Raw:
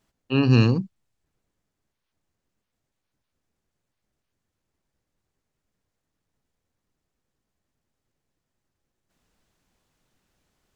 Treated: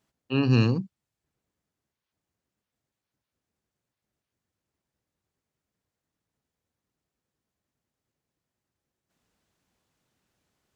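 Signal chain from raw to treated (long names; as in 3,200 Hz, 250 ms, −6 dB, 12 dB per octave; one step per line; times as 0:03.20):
high-pass filter 63 Hz
level −3.5 dB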